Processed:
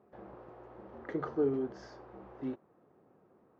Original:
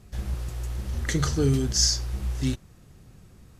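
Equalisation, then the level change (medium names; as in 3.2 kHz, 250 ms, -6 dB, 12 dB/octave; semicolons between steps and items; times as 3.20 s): Butterworth band-pass 600 Hz, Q 0.76; distance through air 85 m; -1.5 dB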